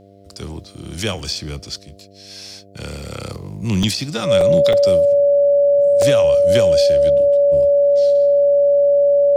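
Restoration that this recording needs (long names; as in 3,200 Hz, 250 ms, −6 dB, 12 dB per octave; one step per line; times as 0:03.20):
clipped peaks rebuilt −6 dBFS
hum removal 98.7 Hz, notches 7
notch filter 570 Hz, Q 30
repair the gap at 0:01.19/0:03.83/0:04.41/0:04.73/0:06.02, 3 ms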